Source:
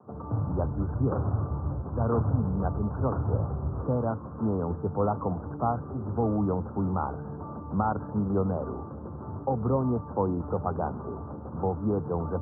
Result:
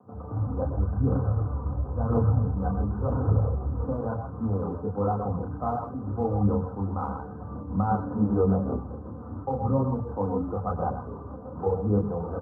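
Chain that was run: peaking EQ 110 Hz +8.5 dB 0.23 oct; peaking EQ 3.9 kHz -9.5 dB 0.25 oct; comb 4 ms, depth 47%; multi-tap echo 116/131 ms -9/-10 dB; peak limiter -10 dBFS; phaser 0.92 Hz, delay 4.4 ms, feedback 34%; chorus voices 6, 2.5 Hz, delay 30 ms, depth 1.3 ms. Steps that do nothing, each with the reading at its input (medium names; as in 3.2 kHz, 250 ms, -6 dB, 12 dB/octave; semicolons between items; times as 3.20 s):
peaking EQ 3.9 kHz: input has nothing above 1.4 kHz; peak limiter -10 dBFS: peak at its input -12.0 dBFS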